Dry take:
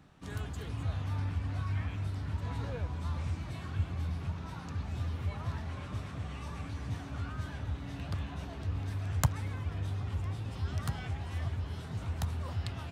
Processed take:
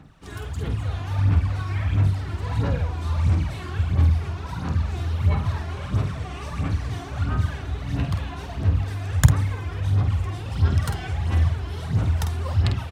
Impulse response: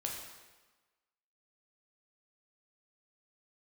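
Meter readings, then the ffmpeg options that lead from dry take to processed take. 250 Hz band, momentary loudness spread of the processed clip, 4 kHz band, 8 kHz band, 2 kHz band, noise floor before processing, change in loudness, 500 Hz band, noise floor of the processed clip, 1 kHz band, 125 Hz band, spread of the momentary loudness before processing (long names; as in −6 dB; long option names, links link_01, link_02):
+11.0 dB, 9 LU, +9.5 dB, +9.5 dB, +10.0 dB, −43 dBFS, +12.5 dB, +10.5 dB, −34 dBFS, +9.5 dB, +12.5 dB, 5 LU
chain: -filter_complex "[0:a]aphaser=in_gain=1:out_gain=1:delay=2.9:decay=0.63:speed=1.5:type=sinusoidal,dynaudnorm=framelen=580:gausssize=3:maxgain=4dB,asplit=2[link_01][link_02];[link_02]adelay=49,volume=-7dB[link_03];[link_01][link_03]amix=inputs=2:normalize=0,volume=3dB"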